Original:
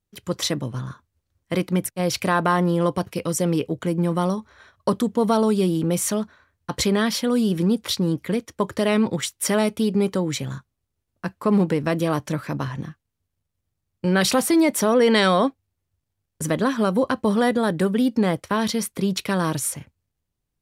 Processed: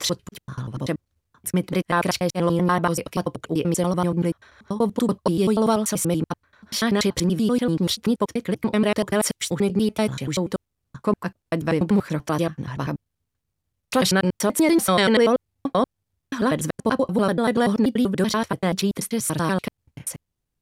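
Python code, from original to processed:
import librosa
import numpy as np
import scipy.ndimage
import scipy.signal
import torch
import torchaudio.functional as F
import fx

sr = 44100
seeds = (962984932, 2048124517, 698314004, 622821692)

y = fx.block_reorder(x, sr, ms=96.0, group=5)
y = fx.wow_flutter(y, sr, seeds[0], rate_hz=2.1, depth_cents=19.0)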